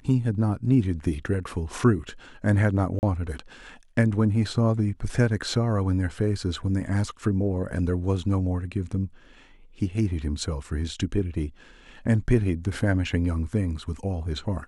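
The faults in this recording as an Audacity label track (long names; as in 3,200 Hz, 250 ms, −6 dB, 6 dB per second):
2.990000	3.030000	drop-out 39 ms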